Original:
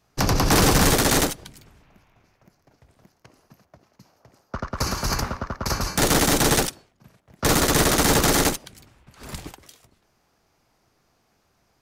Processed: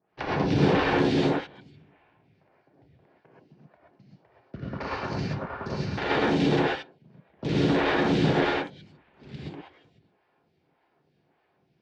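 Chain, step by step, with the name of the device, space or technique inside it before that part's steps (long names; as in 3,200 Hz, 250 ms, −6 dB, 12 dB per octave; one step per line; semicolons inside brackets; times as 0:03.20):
vibe pedal into a guitar amplifier (phaser with staggered stages 1.7 Hz; tube saturation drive 18 dB, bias 0.5; loudspeaker in its box 87–3,500 Hz, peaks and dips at 160 Hz +4 dB, 350 Hz +5 dB, 1,200 Hz −7 dB)
reverb whose tail is shaped and stops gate 150 ms rising, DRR −5.5 dB
level −3.5 dB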